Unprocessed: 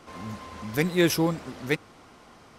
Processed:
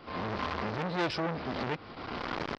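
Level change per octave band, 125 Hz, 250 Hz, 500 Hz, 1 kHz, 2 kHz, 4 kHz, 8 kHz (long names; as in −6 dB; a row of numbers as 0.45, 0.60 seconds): −7.0, −8.5, −6.0, +3.5, −4.5, −5.0, −20.5 decibels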